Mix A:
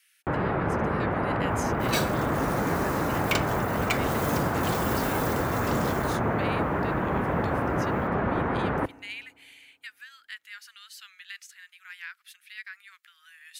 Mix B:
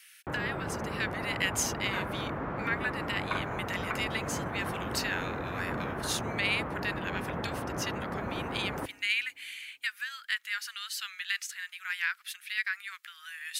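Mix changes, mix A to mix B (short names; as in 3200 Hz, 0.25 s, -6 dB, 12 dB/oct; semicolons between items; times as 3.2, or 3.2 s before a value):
speech +9.5 dB; first sound -9.0 dB; second sound: add Butterworth band-pass 1200 Hz, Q 1.4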